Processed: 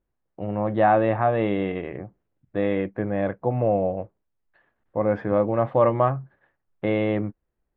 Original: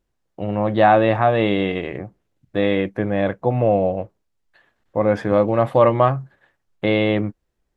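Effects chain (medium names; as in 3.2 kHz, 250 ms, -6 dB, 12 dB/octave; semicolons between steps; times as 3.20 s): low-pass 2 kHz 12 dB/octave; trim -4.5 dB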